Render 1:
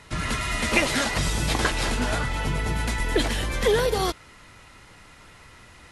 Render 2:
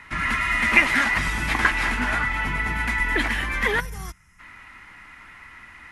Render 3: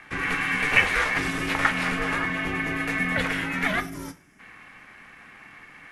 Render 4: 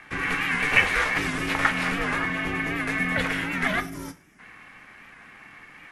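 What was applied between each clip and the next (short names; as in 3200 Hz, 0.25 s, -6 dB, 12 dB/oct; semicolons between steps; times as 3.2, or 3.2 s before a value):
graphic EQ 125/250/500/1000/2000/4000/8000 Hz -6/+4/-10/+5/+12/-6/-6 dB; spectral gain 3.8–4.4, 200–5000 Hz -16 dB; gain -1.5 dB
ring modulator 220 Hz; two-slope reverb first 0.38 s, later 2.5 s, from -28 dB, DRR 9 dB
record warp 78 rpm, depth 100 cents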